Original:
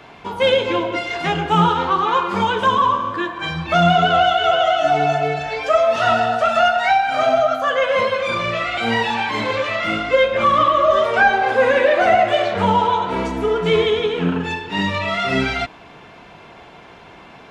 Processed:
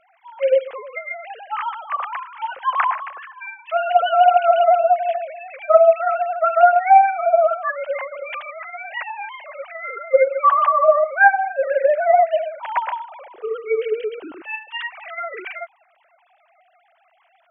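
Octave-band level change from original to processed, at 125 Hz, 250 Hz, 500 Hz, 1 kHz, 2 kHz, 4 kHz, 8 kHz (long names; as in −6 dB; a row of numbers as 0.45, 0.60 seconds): below −40 dB, below −20 dB, −1.0 dB, −1.0 dB, −4.0 dB, below −10 dB, can't be measured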